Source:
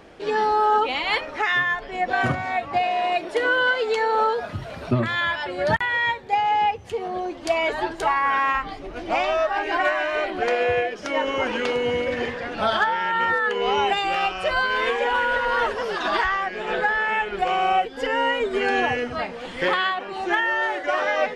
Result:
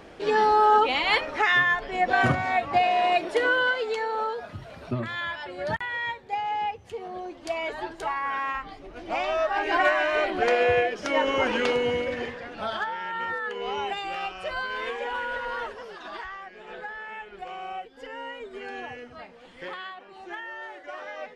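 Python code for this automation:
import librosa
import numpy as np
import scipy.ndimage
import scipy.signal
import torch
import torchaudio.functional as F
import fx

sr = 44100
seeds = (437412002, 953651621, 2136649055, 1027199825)

y = fx.gain(x, sr, db=fx.line((3.22, 0.5), (4.17, -8.0), (8.94, -8.0), (9.76, 0.0), (11.68, 0.0), (12.53, -9.0), (15.48, -9.0), (15.98, -15.5)))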